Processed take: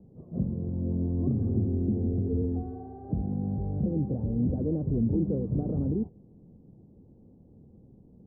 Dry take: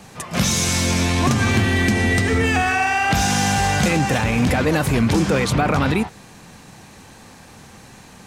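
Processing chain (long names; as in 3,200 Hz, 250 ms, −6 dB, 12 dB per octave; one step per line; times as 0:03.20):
inverse Chebyshev low-pass filter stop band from 2,600 Hz, stop band 80 dB
level −8 dB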